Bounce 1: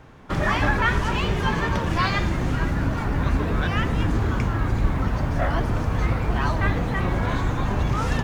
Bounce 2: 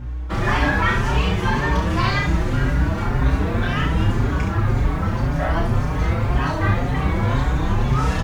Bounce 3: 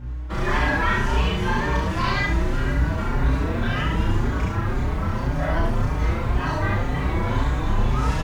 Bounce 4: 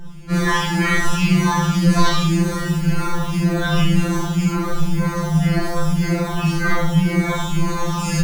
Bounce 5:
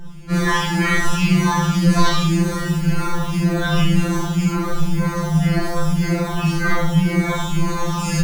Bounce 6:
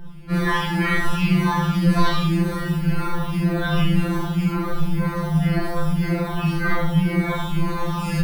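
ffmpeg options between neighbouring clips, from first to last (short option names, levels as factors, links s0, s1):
-filter_complex "[0:a]aeval=exprs='val(0)+0.0282*(sin(2*PI*60*n/s)+sin(2*PI*2*60*n/s)/2+sin(2*PI*3*60*n/s)/3+sin(2*PI*4*60*n/s)/4+sin(2*PI*5*60*n/s)/5)':c=same,aecho=1:1:31|69:0.631|0.531,asplit=2[s0][s1];[s1]adelay=5.2,afreqshift=1.9[s2];[s0][s2]amix=inputs=2:normalize=1,volume=1.41"
-af "aecho=1:1:33|72:0.631|0.668,volume=0.562"
-filter_complex "[0:a]bass=f=250:g=13,treble=f=4000:g=13,acrossover=split=370[s0][s1];[s0]alimiter=limit=0.501:level=0:latency=1:release=48[s2];[s2][s1]amix=inputs=2:normalize=0,afftfilt=real='re*2.83*eq(mod(b,8),0)':imag='im*2.83*eq(mod(b,8),0)':win_size=2048:overlap=0.75,volume=1.78"
-af anull
-af "equalizer=f=6700:w=2:g=-14.5,volume=0.75"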